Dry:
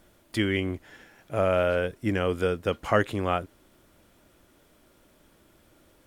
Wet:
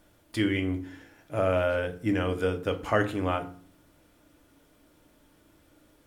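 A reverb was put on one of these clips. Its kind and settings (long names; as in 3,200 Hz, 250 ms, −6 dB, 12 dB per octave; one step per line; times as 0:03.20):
feedback delay network reverb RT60 0.45 s, low-frequency decay 1.55×, high-frequency decay 0.7×, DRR 5.5 dB
level −3 dB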